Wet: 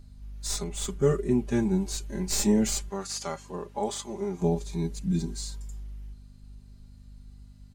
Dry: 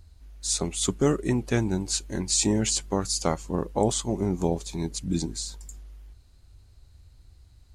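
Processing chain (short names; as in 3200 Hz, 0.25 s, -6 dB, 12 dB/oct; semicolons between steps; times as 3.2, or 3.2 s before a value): tracing distortion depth 0.024 ms; 2.89–4.42 weighting filter A; harmonic-percussive split percussive -13 dB; comb 5 ms, depth 90%; hum 50 Hz, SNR 20 dB; 0.64–1.49 mismatched tape noise reduction decoder only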